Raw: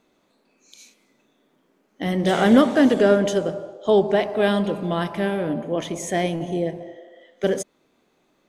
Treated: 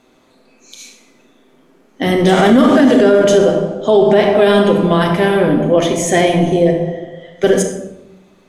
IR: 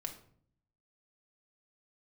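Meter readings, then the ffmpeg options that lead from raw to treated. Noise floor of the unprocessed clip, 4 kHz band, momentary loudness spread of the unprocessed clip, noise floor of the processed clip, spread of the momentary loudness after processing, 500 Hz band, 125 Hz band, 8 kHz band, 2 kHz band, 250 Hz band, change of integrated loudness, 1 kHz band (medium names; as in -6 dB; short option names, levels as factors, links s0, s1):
-66 dBFS, +9.5 dB, 13 LU, -52 dBFS, 10 LU, +9.5 dB, +10.0 dB, +11.5 dB, +8.5 dB, +8.0 dB, +9.0 dB, +9.0 dB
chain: -filter_complex "[0:a]bandreject=f=50:t=h:w=6,bandreject=f=100:t=h:w=6,bandreject=f=150:t=h:w=6[s0];[1:a]atrim=start_sample=2205,asetrate=25137,aresample=44100[s1];[s0][s1]afir=irnorm=-1:irlink=0,alimiter=level_in=3.76:limit=0.891:release=50:level=0:latency=1,volume=0.891"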